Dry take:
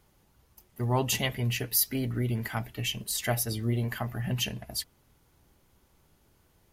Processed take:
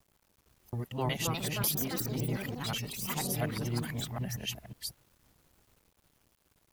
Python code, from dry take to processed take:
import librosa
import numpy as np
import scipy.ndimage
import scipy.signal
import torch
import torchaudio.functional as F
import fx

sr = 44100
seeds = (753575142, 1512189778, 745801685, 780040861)

y = fx.local_reverse(x, sr, ms=182.0)
y = fx.echo_pitch(y, sr, ms=472, semitones=4, count=3, db_per_echo=-3.0)
y = fx.quant_dither(y, sr, seeds[0], bits=10, dither='none')
y = F.gain(torch.from_numpy(y), -6.0).numpy()